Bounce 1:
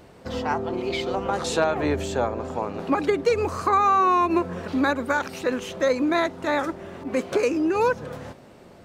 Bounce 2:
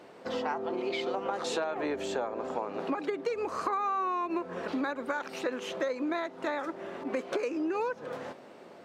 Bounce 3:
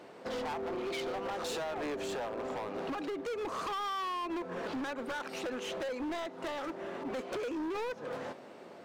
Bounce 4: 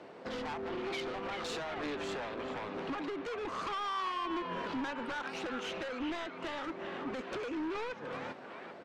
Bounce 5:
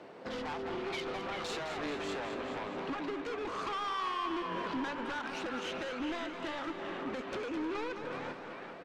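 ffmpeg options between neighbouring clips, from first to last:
ffmpeg -i in.wav -af "highpass=290,highshelf=frequency=6500:gain=-11,acompressor=threshold=-29dB:ratio=6" out.wav
ffmpeg -i in.wav -af "asoftclip=type=hard:threshold=-34dB" out.wav
ffmpeg -i in.wav -filter_complex "[0:a]acrossover=split=420|890|4300[link_01][link_02][link_03][link_04];[link_02]acompressor=threshold=-52dB:ratio=6[link_05];[link_03]asplit=8[link_06][link_07][link_08][link_09][link_10][link_11][link_12][link_13];[link_07]adelay=392,afreqshift=-84,volume=-4dB[link_14];[link_08]adelay=784,afreqshift=-168,volume=-9.4dB[link_15];[link_09]adelay=1176,afreqshift=-252,volume=-14.7dB[link_16];[link_10]adelay=1568,afreqshift=-336,volume=-20.1dB[link_17];[link_11]adelay=1960,afreqshift=-420,volume=-25.4dB[link_18];[link_12]adelay=2352,afreqshift=-504,volume=-30.8dB[link_19];[link_13]adelay=2744,afreqshift=-588,volume=-36.1dB[link_20];[link_06][link_14][link_15][link_16][link_17][link_18][link_19][link_20]amix=inputs=8:normalize=0[link_21];[link_01][link_05][link_21][link_04]amix=inputs=4:normalize=0,adynamicsmooth=sensitivity=5:basefreq=6100,volume=1dB" out.wav
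ffmpeg -i in.wav -af "aecho=1:1:211|422|633|844|1055|1266|1477:0.355|0.202|0.115|0.0657|0.0375|0.0213|0.0122" out.wav

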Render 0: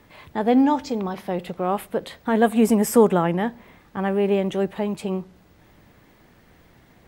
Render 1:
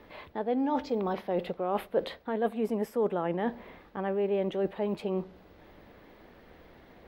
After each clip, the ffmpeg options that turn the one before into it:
ffmpeg -i in.wav -af "highshelf=frequency=3700:gain=-7,areverse,acompressor=threshold=-27dB:ratio=10,areverse,equalizer=frequency=125:width_type=o:width=1:gain=-8,equalizer=frequency=500:width_type=o:width=1:gain=5,equalizer=frequency=4000:width_type=o:width=1:gain=4,equalizer=frequency=8000:width_type=o:width=1:gain=-11" out.wav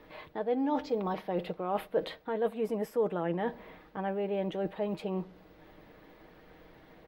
ffmpeg -i in.wav -af "aecho=1:1:6.4:0.42,volume=-2dB" out.wav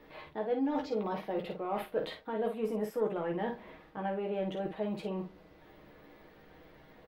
ffmpeg -i in.wav -filter_complex "[0:a]asoftclip=type=tanh:threshold=-19.5dB,asplit=2[link_01][link_02];[link_02]aecho=0:1:14|52:0.596|0.501[link_03];[link_01][link_03]amix=inputs=2:normalize=0,volume=-3dB" out.wav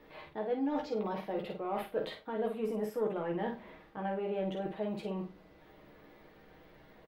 ffmpeg -i in.wav -filter_complex "[0:a]asplit=2[link_01][link_02];[link_02]adelay=47,volume=-11dB[link_03];[link_01][link_03]amix=inputs=2:normalize=0,volume=-1.5dB" out.wav

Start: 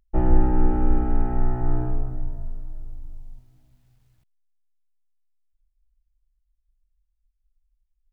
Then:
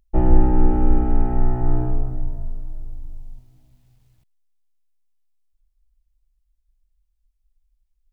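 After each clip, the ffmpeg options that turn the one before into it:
ffmpeg -i in.wav -af "equalizer=frequency=1500:width_type=o:width=0.84:gain=-4.5,volume=3.5dB" out.wav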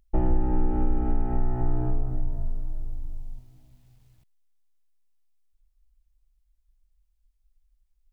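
ffmpeg -i in.wav -af "acompressor=threshold=-20dB:ratio=3" out.wav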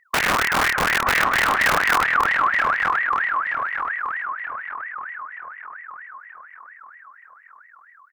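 ffmpeg -i in.wav -filter_complex "[0:a]aeval=exprs='(mod(7.08*val(0)+1,2)-1)/7.08':channel_layout=same,asplit=2[link_01][link_02];[link_02]adelay=926,lowpass=frequency=970:poles=1,volume=-3dB,asplit=2[link_03][link_04];[link_04]adelay=926,lowpass=frequency=970:poles=1,volume=0.51,asplit=2[link_05][link_06];[link_06]adelay=926,lowpass=frequency=970:poles=1,volume=0.51,asplit=2[link_07][link_08];[link_08]adelay=926,lowpass=frequency=970:poles=1,volume=0.51,asplit=2[link_09][link_10];[link_10]adelay=926,lowpass=frequency=970:poles=1,volume=0.51,asplit=2[link_11][link_12];[link_12]adelay=926,lowpass=frequency=970:poles=1,volume=0.51,asplit=2[link_13][link_14];[link_14]adelay=926,lowpass=frequency=970:poles=1,volume=0.51[link_15];[link_03][link_05][link_07][link_09][link_11][link_13][link_15]amix=inputs=7:normalize=0[link_16];[link_01][link_16]amix=inputs=2:normalize=0,aeval=exprs='val(0)*sin(2*PI*1500*n/s+1500*0.3/4.3*sin(2*PI*4.3*n/s))':channel_layout=same,volume=4dB" out.wav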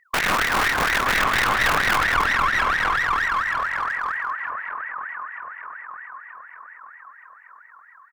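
ffmpeg -i in.wav -filter_complex "[0:a]aeval=exprs='clip(val(0),-1,0.0891)':channel_layout=same,asplit=5[link_01][link_02][link_03][link_04][link_05];[link_02]adelay=186,afreqshift=-56,volume=-8dB[link_06];[link_03]adelay=372,afreqshift=-112,volume=-17.6dB[link_07];[link_04]adelay=558,afreqshift=-168,volume=-27.3dB[link_08];[link_05]adelay=744,afreqshift=-224,volume=-36.9dB[link_09];[link_01][link_06][link_07][link_08][link_09]amix=inputs=5:normalize=0" out.wav

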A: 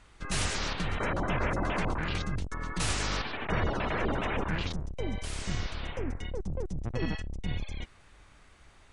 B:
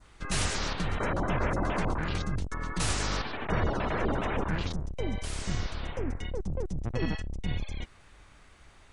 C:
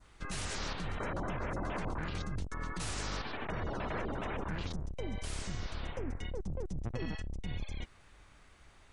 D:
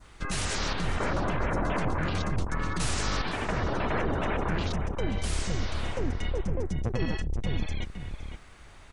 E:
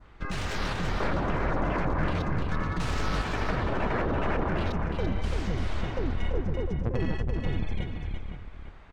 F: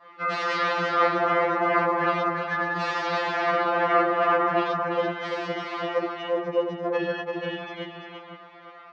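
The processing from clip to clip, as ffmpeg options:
ffmpeg -i in.wav -af "adynamicequalizer=threshold=0.00355:dfrequency=2600:dqfactor=1.1:tfrequency=2600:tqfactor=1.1:attack=5:release=100:ratio=0.375:range=2.5:mode=cutabove:tftype=bell,volume=1.5dB" out.wav
ffmpeg -i in.wav -af "alimiter=level_in=0.5dB:limit=-24dB:level=0:latency=1:release=71,volume=-0.5dB,volume=-4dB" out.wav
ffmpeg -i in.wav -filter_complex "[0:a]asplit=2[link_01][link_02];[link_02]adelay=513.1,volume=-7dB,highshelf=frequency=4000:gain=-11.5[link_03];[link_01][link_03]amix=inputs=2:normalize=0,volume=8dB" out.wav
ffmpeg -i in.wav -af "adynamicsmooth=sensitivity=3:basefreq=2700,aecho=1:1:338|453:0.531|0.106" out.wav
ffmpeg -i in.wav -af "highpass=370,equalizer=frequency=440:width_type=q:width=4:gain=10,equalizer=frequency=690:width_type=q:width=4:gain=6,equalizer=frequency=1200:width_type=q:width=4:gain=9,equalizer=frequency=1900:width_type=q:width=4:gain=4,lowpass=frequency=5200:width=0.5412,lowpass=frequency=5200:width=1.3066,afftfilt=real='re*2.83*eq(mod(b,8),0)':imag='im*2.83*eq(mod(b,8),0)':win_size=2048:overlap=0.75,volume=6.5dB" out.wav

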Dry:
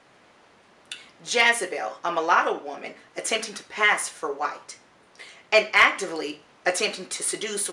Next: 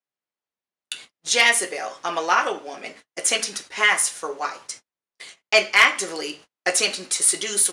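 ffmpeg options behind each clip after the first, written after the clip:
ffmpeg -i in.wav -af "agate=range=-41dB:threshold=-45dB:ratio=16:detection=peak,highshelf=frequency=3300:gain=11.5,volume=-1dB" out.wav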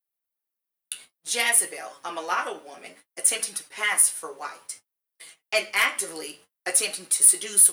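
ffmpeg -i in.wav -filter_complex "[0:a]flanger=delay=6.1:depth=6.6:regen=40:speed=0.57:shape=sinusoidal,acrossover=split=420[link_01][link_02];[link_02]aexciter=amount=5.2:drive=8:freq=9300[link_03];[link_01][link_03]amix=inputs=2:normalize=0,volume=-3.5dB" out.wav

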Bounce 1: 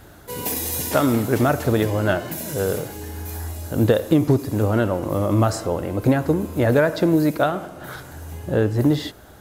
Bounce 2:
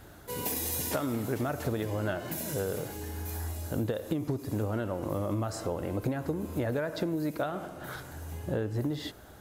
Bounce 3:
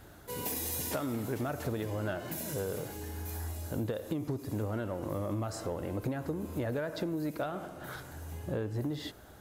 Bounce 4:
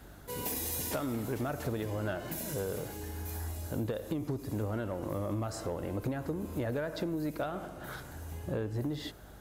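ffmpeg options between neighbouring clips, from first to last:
ffmpeg -i in.wav -af "acompressor=threshold=-22dB:ratio=10,volume=-5.5dB" out.wav
ffmpeg -i in.wav -af "aeval=exprs='0.126*(cos(1*acos(clip(val(0)/0.126,-1,1)))-cos(1*PI/2))+0.00562*(cos(5*acos(clip(val(0)/0.126,-1,1)))-cos(5*PI/2))':channel_layout=same,volume=-4dB" out.wav
ffmpeg -i in.wav -af "aeval=exprs='val(0)+0.002*(sin(2*PI*50*n/s)+sin(2*PI*2*50*n/s)/2+sin(2*PI*3*50*n/s)/3+sin(2*PI*4*50*n/s)/4+sin(2*PI*5*50*n/s)/5)':channel_layout=same,asoftclip=type=hard:threshold=-26dB" out.wav

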